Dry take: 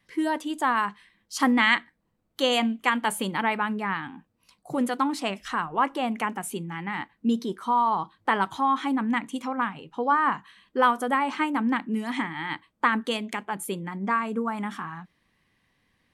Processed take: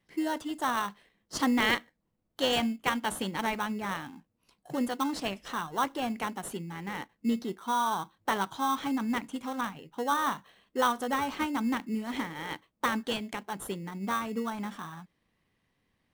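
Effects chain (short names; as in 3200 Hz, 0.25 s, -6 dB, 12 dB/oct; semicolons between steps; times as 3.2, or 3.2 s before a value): dynamic EQ 4900 Hz, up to +6 dB, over -43 dBFS, Q 0.76; in parallel at -5.5 dB: sample-rate reducer 2400 Hz, jitter 0%; on the sum: gain -8 dB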